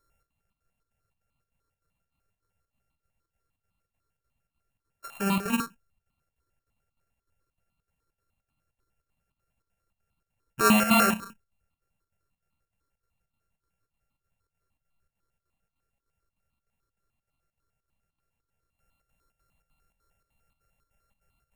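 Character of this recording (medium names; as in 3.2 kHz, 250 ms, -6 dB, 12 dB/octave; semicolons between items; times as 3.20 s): a buzz of ramps at a fixed pitch in blocks of 32 samples; chopped level 3.3 Hz, depth 60%, duty 75%; notches that jump at a steady rate 10 Hz 760–1600 Hz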